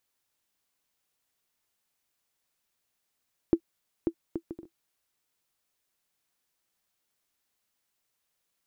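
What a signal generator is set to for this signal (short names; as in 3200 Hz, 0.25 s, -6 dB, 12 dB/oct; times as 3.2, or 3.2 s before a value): bouncing ball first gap 0.54 s, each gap 0.53, 333 Hz, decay 72 ms -10.5 dBFS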